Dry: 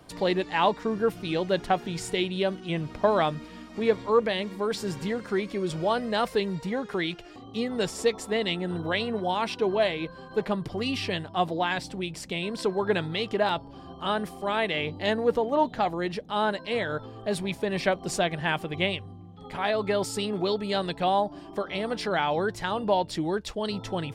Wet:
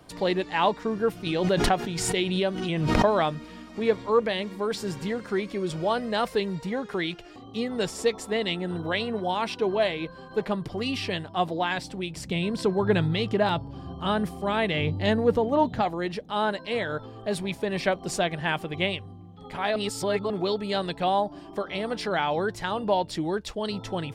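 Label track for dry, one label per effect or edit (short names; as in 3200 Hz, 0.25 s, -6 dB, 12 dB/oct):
1.260000	3.740000	backwards sustainer at most 31 dB/s
12.160000	15.820000	bell 100 Hz +12.5 dB 2 oct
19.760000	20.300000	reverse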